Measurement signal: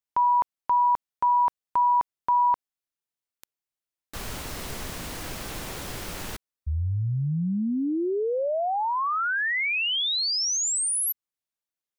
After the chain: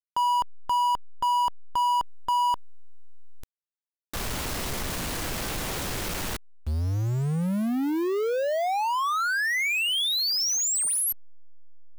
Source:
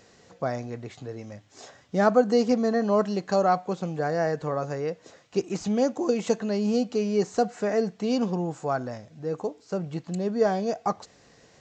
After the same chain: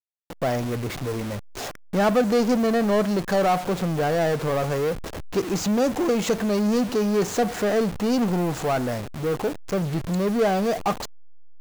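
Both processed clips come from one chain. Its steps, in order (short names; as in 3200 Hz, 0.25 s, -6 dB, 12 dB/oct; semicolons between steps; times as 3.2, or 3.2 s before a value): level-crossing sampler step -43 dBFS; power-law curve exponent 0.5; gain -3.5 dB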